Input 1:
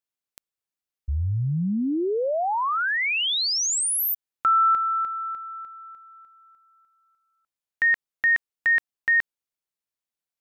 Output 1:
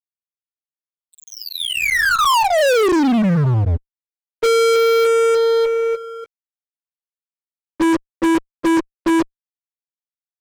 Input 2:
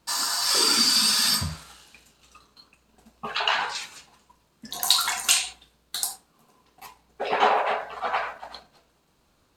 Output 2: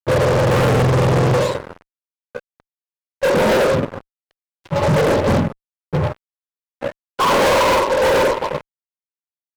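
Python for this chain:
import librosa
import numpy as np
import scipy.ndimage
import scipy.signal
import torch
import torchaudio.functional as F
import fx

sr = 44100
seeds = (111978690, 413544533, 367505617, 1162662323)

y = fx.octave_mirror(x, sr, pivot_hz=780.0)
y = fx.double_bandpass(y, sr, hz=740.0, octaves=0.88)
y = fx.fuzz(y, sr, gain_db=49.0, gate_db=-57.0)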